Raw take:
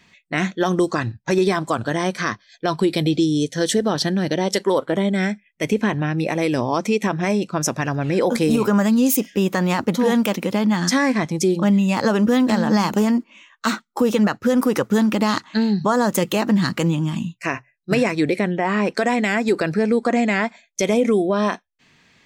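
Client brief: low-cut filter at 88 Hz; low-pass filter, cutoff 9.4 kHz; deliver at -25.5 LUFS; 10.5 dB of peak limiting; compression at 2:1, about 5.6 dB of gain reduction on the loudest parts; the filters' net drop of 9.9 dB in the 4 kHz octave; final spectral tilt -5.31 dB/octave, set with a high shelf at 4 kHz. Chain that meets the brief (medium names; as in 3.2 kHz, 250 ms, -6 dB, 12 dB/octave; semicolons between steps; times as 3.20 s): high-pass 88 Hz; low-pass 9.4 kHz; treble shelf 4 kHz -7.5 dB; peaking EQ 4 kHz -8.5 dB; compression 2:1, threshold -24 dBFS; trim +5 dB; peak limiter -16 dBFS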